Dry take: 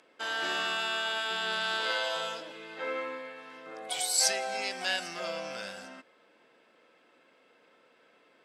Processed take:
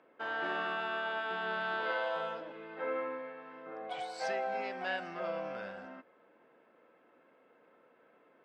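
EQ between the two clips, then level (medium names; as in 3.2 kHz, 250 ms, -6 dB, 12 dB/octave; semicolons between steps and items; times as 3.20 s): low-pass 1.5 kHz 12 dB/octave; 0.0 dB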